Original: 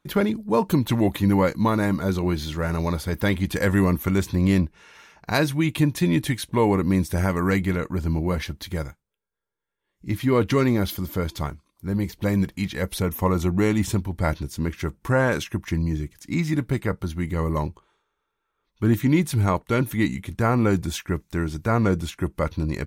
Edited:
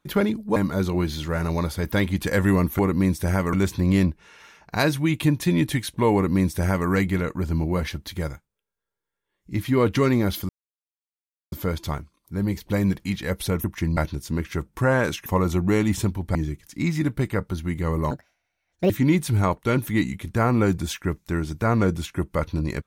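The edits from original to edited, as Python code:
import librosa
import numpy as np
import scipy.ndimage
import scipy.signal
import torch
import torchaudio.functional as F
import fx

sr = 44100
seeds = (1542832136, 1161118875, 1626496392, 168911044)

y = fx.edit(x, sr, fx.cut(start_s=0.56, length_s=1.29),
    fx.duplicate(start_s=6.69, length_s=0.74, to_s=4.08),
    fx.insert_silence(at_s=11.04, length_s=1.03),
    fx.swap(start_s=13.16, length_s=1.09, other_s=15.54, other_length_s=0.33),
    fx.speed_span(start_s=17.63, length_s=1.31, speed=1.66), tone=tone)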